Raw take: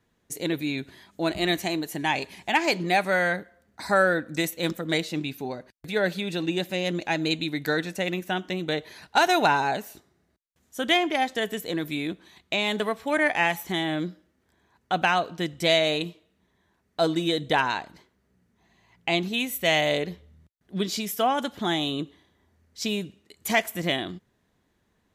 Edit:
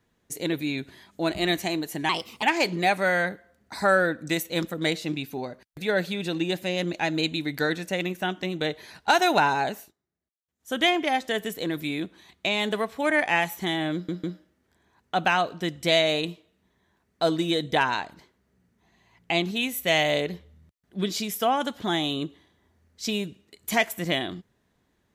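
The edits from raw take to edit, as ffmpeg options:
-filter_complex "[0:a]asplit=7[s0][s1][s2][s3][s4][s5][s6];[s0]atrim=end=2.094[s7];[s1]atrim=start=2.09:end=2.5,asetpts=PTS-STARTPTS,asetrate=53802,aresample=44100,atrim=end_sample=14820,asetpts=PTS-STARTPTS[s8];[s2]atrim=start=2.496:end=9.99,asetpts=PTS-STARTPTS,afade=t=out:st=7.364:d=0.13:silence=0.105925[s9];[s3]atrim=start=9.99:end=10.66,asetpts=PTS-STARTPTS,volume=0.106[s10];[s4]atrim=start=10.66:end=14.162,asetpts=PTS-STARTPTS,afade=t=in:d=0.13:silence=0.105925[s11];[s5]atrim=start=14.008:end=14.162[s12];[s6]atrim=start=14.008[s13];[s7][s8]acrossfade=d=0.004:c1=hsin:c2=hsin[s14];[s9][s10][s11]concat=n=3:v=0:a=1[s15];[s14][s15]acrossfade=d=0.004:c1=hsin:c2=hsin[s16];[s16][s12]acrossfade=d=0.004:c1=hsin:c2=hsin[s17];[s17][s13]acrossfade=d=0.004:c1=hsin:c2=hsin"

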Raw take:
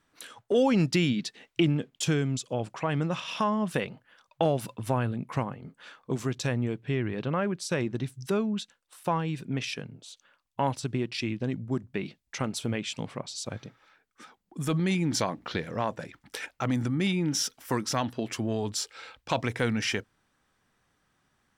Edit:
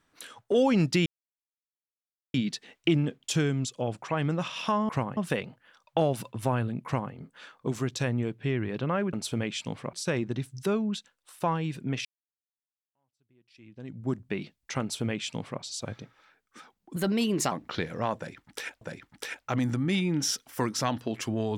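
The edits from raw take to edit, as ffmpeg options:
-filter_complex "[0:a]asplit=10[s0][s1][s2][s3][s4][s5][s6][s7][s8][s9];[s0]atrim=end=1.06,asetpts=PTS-STARTPTS,afade=t=out:st=1.056:d=0.004:c=hsin,apad=pad_dur=1.28[s10];[s1]atrim=start=1.06:end=3.612,asetpts=PTS-STARTPTS,afade=t=in:d=0.004:c=hsin[s11];[s2]atrim=start=5.288:end=5.572[s12];[s3]atrim=start=3.608:end=7.572[s13];[s4]atrim=start=12.448:end=13.252[s14];[s5]atrim=start=7.568:end=9.69,asetpts=PTS-STARTPTS,afade=t=out:st=2.118:d=0.004:c=hsin[s15];[s6]atrim=start=9.69:end=14.604,asetpts=PTS-STARTPTS,afade=t=in:d=2.02:c=exp[s16];[s7]atrim=start=14.6:end=15.28,asetpts=PTS-STARTPTS,asetrate=54243,aresample=44100,atrim=end_sample=24380,asetpts=PTS-STARTPTS[s17];[s8]atrim=start=15.276:end=16.582[s18];[s9]atrim=start=15.928[s19];[s10][s11]concat=n=2:v=0:a=1[s20];[s20][s12]acrossfade=d=0.004:c1=hsin:c2=hsin[s21];[s21][s13]acrossfade=d=0.004:c1=hsin:c2=hsin[s22];[s22][s14]acrossfade=d=0.004:c1=hsin:c2=hsin[s23];[s15][s16]concat=n=2:v=0:a=1[s24];[s23][s24]acrossfade=d=0.004:c1=hsin:c2=hsin[s25];[s25][s17]acrossfade=d=0.004:c1=hsin:c2=hsin[s26];[s26][s18]acrossfade=d=0.004:c1=hsin:c2=hsin[s27];[s27][s19]acrossfade=d=0.004:c1=hsin:c2=hsin"

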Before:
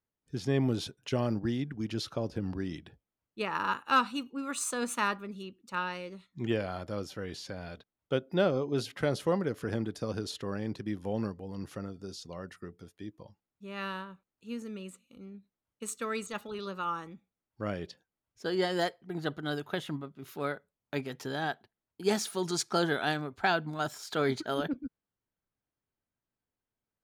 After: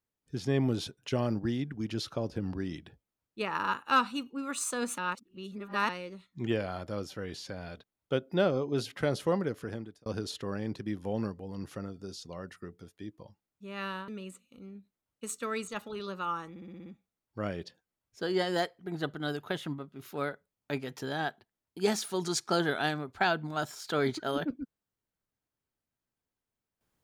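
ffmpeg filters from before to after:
-filter_complex "[0:a]asplit=11[s0][s1][s2][s3][s4][s5][s6][s7][s8][s9][s10];[s0]atrim=end=4.982[s11];[s1]atrim=start=4.978:end=5.892,asetpts=PTS-STARTPTS,areverse[s12];[s2]atrim=start=5.888:end=10.06,asetpts=PTS-STARTPTS,afade=t=out:st=3.552:d=0.62[s13];[s3]atrim=start=10.06:end=14.082,asetpts=PTS-STARTPTS,afade=t=in:d=0.004:c=hsin[s14];[s4]atrim=start=14.668:end=17.152[s15];[s5]atrim=start=17.088:end=17.152[s16];[s6]atrim=start=17.088:end=17.152[s17];[s7]atrim=start=17.088:end=17.152[s18];[s8]atrim=start=17.088:end=17.152[s19];[s9]atrim=start=17.088:end=17.152[s20];[s10]atrim=start=17.088[s21];[s11][s12]acrossfade=d=0.004:c1=hsin:c2=hsin[s22];[s13][s14]concat=n=2:v=0:a=1[s23];[s22][s23]acrossfade=d=0.004:c1=hsin:c2=hsin[s24];[s24][s15]acrossfade=d=0.004:c1=hsin:c2=hsin[s25];[s25][s16]acrossfade=d=0.004:c1=hsin:c2=hsin[s26];[s26][s17]acrossfade=d=0.004:c1=hsin:c2=hsin[s27];[s27][s18]acrossfade=d=0.004:c1=hsin:c2=hsin[s28];[s28][s19]acrossfade=d=0.004:c1=hsin:c2=hsin[s29];[s29][s20]acrossfade=d=0.004:c1=hsin:c2=hsin[s30];[s30][s21]acrossfade=d=0.004:c1=hsin:c2=hsin"

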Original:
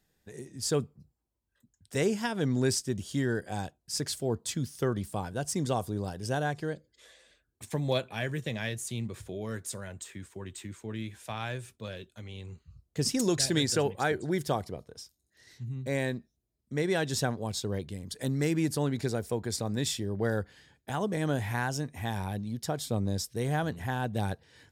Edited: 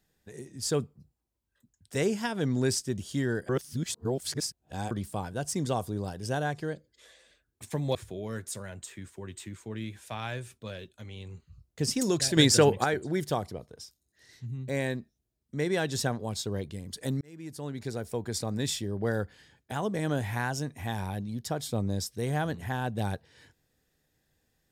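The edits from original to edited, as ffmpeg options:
-filter_complex "[0:a]asplit=7[s0][s1][s2][s3][s4][s5][s6];[s0]atrim=end=3.492[s7];[s1]atrim=start=3.488:end=4.912,asetpts=PTS-STARTPTS,areverse[s8];[s2]atrim=start=4.908:end=7.952[s9];[s3]atrim=start=9.128:end=13.552[s10];[s4]atrim=start=13.548:end=14.022,asetpts=PTS-STARTPTS,volume=2.24[s11];[s5]atrim=start=14.018:end=18.39,asetpts=PTS-STARTPTS,afade=t=out:st=4.368:d=0.004:c=hsin[s12];[s6]atrim=start=18.39,asetpts=PTS-STARTPTS,afade=t=in:d=1.13[s13];[s7][s8]acrossfade=d=0.004:c1=hsin:c2=hsin[s14];[s14][s9]acrossfade=d=0.004:c1=hsin:c2=hsin[s15];[s15][s10]acrossfade=d=0.004:c1=hsin:c2=hsin[s16];[s16][s11]acrossfade=d=0.004:c1=hsin:c2=hsin[s17];[s12][s13]concat=n=2:v=0:a=1[s18];[s17][s18]acrossfade=d=0.004:c1=hsin:c2=hsin"

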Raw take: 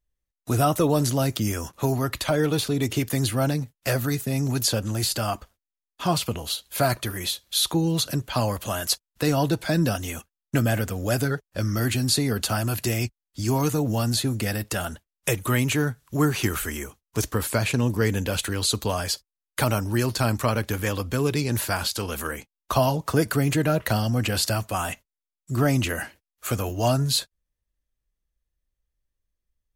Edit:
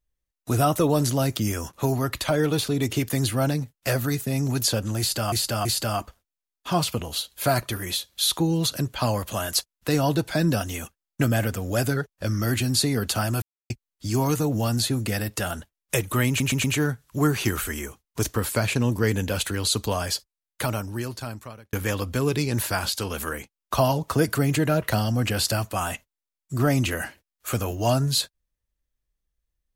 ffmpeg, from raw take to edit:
-filter_complex "[0:a]asplit=9[s0][s1][s2][s3][s4][s5][s6][s7][s8];[s0]atrim=end=5.322[s9];[s1]atrim=start=4.988:end=5.322[s10];[s2]atrim=start=4.988:end=12.76,asetpts=PTS-STARTPTS,afade=t=out:st=7.768:d=0.004:c=hsin[s11];[s3]atrim=start=12.76:end=13.04,asetpts=PTS-STARTPTS,volume=0[s12];[s4]atrim=start=13.04:end=15.742,asetpts=PTS-STARTPTS,afade=t=in:d=0.004:c=hsin[s13];[s5]atrim=start=15.618:end=15.742[s14];[s6]atrim=start=15.618:end=15.742[s15];[s7]atrim=start=15.618:end=20.71,asetpts=PTS-STARTPTS,afade=t=out:st=3.472:d=1.62[s16];[s8]atrim=start=20.71,asetpts=PTS-STARTPTS,afade=t=in:d=0.004:c=hsin[s17];[s9][s10]acrossfade=d=0.004:c1=hsin:c2=hsin[s18];[s11][s12][s13]concat=n=3:v=0:a=1[s19];[s18][s19]acrossfade=d=0.004:c1=hsin:c2=hsin[s20];[s20][s14]acrossfade=d=0.004:c1=hsin:c2=hsin[s21];[s21][s15]acrossfade=d=0.004:c1=hsin:c2=hsin[s22];[s16][s17]concat=n=2:v=0:a=1[s23];[s22][s23]acrossfade=d=0.004:c1=hsin:c2=hsin"

